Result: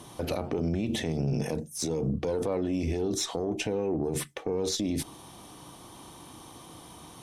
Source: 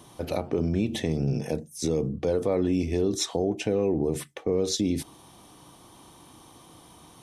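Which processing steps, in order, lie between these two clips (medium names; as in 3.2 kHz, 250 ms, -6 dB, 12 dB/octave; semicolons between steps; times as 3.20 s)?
peak limiter -24 dBFS, peak gain reduction 9.5 dB; Chebyshev shaper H 2 -17 dB, 4 -38 dB, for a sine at -24 dBFS; trim +3.5 dB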